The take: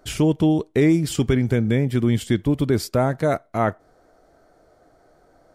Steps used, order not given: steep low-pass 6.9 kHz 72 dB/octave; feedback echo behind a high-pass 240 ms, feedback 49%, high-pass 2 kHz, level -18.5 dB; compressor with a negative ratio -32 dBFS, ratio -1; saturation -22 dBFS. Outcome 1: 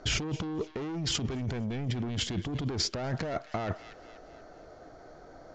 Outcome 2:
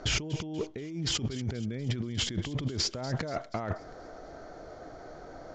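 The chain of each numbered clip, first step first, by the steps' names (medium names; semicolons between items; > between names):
saturation > feedback echo behind a high-pass > compressor with a negative ratio > steep low-pass; compressor with a negative ratio > feedback echo behind a high-pass > saturation > steep low-pass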